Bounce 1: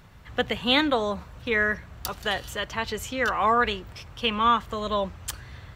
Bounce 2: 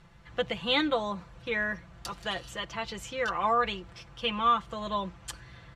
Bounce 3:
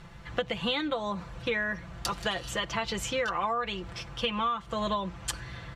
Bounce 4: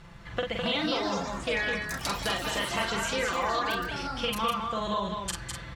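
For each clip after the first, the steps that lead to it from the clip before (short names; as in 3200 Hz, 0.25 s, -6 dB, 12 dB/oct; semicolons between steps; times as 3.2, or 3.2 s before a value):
Bessel low-pass 8500 Hz, order 8; dynamic EQ 1700 Hz, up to -5 dB, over -42 dBFS, Q 4.9; comb 5.9 ms, depth 66%; gain -6 dB
compressor 16:1, threshold -34 dBFS, peak gain reduction 15 dB; gain +8 dB
doubler 45 ms -4 dB; echo 0.206 s -5 dB; echoes that change speed 0.371 s, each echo +5 st, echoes 3, each echo -6 dB; gain -1.5 dB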